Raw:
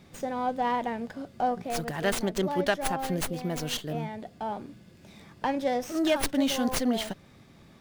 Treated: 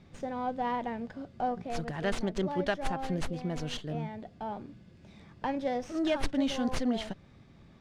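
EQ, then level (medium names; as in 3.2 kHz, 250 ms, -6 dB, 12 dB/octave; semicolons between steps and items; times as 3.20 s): distance through air 78 m; bass shelf 130 Hz +8 dB; -4.5 dB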